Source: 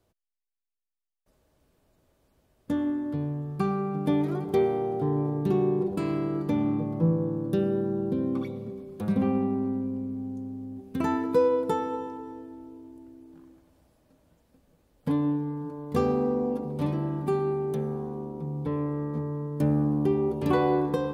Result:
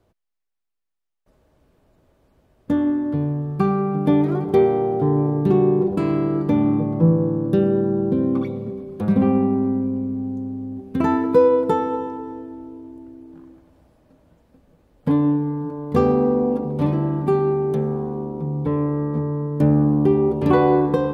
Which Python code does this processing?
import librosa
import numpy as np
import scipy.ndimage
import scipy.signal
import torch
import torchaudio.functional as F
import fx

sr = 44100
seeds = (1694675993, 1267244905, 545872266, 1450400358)

y = fx.high_shelf(x, sr, hz=3500.0, db=-10.5)
y = y * librosa.db_to_amplitude(8.0)